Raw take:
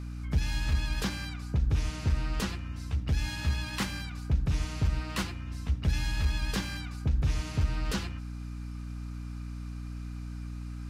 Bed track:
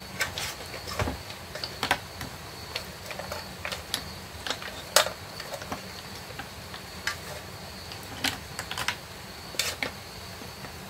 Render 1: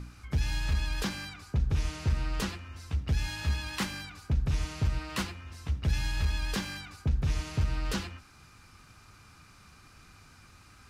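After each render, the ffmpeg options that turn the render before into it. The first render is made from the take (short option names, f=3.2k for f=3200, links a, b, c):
-af "bandreject=f=60:t=h:w=4,bandreject=f=120:t=h:w=4,bandreject=f=180:t=h:w=4,bandreject=f=240:t=h:w=4,bandreject=f=300:t=h:w=4"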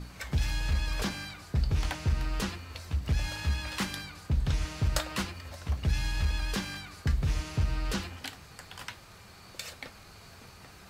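-filter_complex "[1:a]volume=-12.5dB[a];[0:a][a]amix=inputs=2:normalize=0"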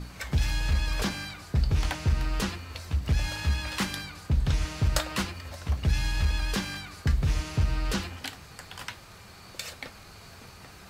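-af "volume=3dB"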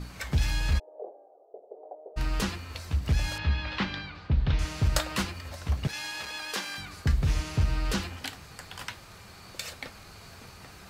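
-filter_complex "[0:a]asplit=3[a][b][c];[a]afade=t=out:st=0.78:d=0.02[d];[b]asuperpass=centerf=540:order=8:qfactor=1.6,afade=t=in:st=0.78:d=0.02,afade=t=out:st=2.16:d=0.02[e];[c]afade=t=in:st=2.16:d=0.02[f];[d][e][f]amix=inputs=3:normalize=0,asettb=1/sr,asplit=3[g][h][i];[g]atrim=end=3.384[j];[h]atrim=start=3.38:end=4.59,asetpts=PTS-STARTPTS,afade=t=in:d=0.004:c=qsin,afade=t=out:st=1.206:d=0.004:c=qsin,lowpass=f=4.1k:w=0.5412,lowpass=f=4.1k:w=1.3066[k];[i]atrim=start=4.586[l];[j][k]acrossfade=d=0.004:c1=hsin:c2=qsin[m];[m][l]acrossfade=d=0.004:c1=qsin:c2=hsin,asettb=1/sr,asplit=3[n][o][p];[n]atrim=end=5.874[q];[o]atrim=start=5.87:end=6.78,asetpts=PTS-STARTPTS,afade=t=in:d=0.004:c=qsin,afade=t=out:st=0.906:d=0.004:c=qsin,highpass=440[r];[p]atrim=start=6.776[s];[q][r]acrossfade=d=0.004:c1=hsin:c2=qsin[t];[t][s]acrossfade=d=0.004:c1=qsin:c2=hsin"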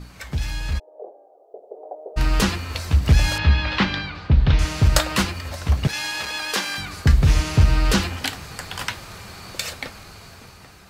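-af "dynaudnorm=f=690:g=5:m=11.5dB"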